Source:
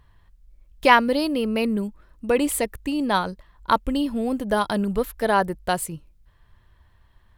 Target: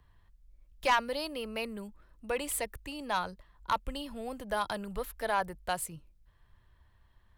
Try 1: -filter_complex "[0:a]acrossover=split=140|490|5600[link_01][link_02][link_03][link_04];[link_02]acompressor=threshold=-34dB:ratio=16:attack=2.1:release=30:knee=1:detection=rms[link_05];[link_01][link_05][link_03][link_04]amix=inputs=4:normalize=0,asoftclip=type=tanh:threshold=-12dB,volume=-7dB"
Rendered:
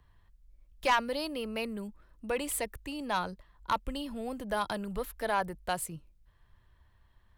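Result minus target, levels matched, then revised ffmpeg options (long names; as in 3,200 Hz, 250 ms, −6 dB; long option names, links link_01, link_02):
downward compressor: peak gain reduction −7.5 dB
-filter_complex "[0:a]acrossover=split=140|490|5600[link_01][link_02][link_03][link_04];[link_02]acompressor=threshold=-42dB:ratio=16:attack=2.1:release=30:knee=1:detection=rms[link_05];[link_01][link_05][link_03][link_04]amix=inputs=4:normalize=0,asoftclip=type=tanh:threshold=-12dB,volume=-7dB"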